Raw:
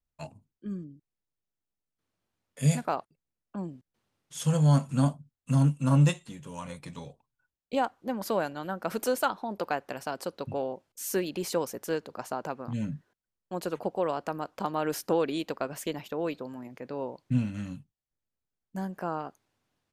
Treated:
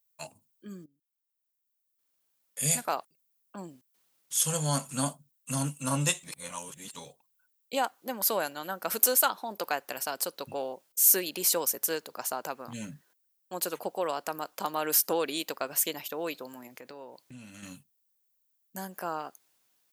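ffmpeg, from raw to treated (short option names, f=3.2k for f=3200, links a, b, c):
-filter_complex "[0:a]asettb=1/sr,asplit=3[a][b][c];[a]atrim=end=16.794[d];[b]atrim=start=16.79:end=17.63,asetpts=PTS-STARTPTS,afade=t=in:d=0.004:c=qsin,afade=t=out:st=0.836:d=0.004:c=qsin,acompressor=threshold=-40dB:ratio=3:attack=3.2:release=140:knee=1:detection=peak[e];[c]atrim=start=17.626[f];[d][e]acrossfade=d=0.004:c1=hsin:c2=qsin[g];[g][f]acrossfade=d=0.004:c1=qsin:c2=hsin,asplit=4[h][i][j][k];[h]atrim=end=0.86,asetpts=PTS-STARTPTS,afade=t=out:st=0.856:d=0.004:c=hsin:silence=0.133352[l];[i]atrim=start=0.86:end=6.232,asetpts=PTS-STARTPTS,afade=t=in:d=2.04:silence=0.133352[m];[j]atrim=start=6.228:end=6.942,asetpts=PTS-STARTPTS,areverse[n];[k]atrim=start=6.938[o];[l][m]concat=n=2:v=0:a=1[p];[p][n]acrossfade=d=0.004:c1=hsin:c2=hsin[q];[q][o]acrossfade=d=0.004:c1=hsin:c2=hsin,aemphasis=mode=production:type=riaa"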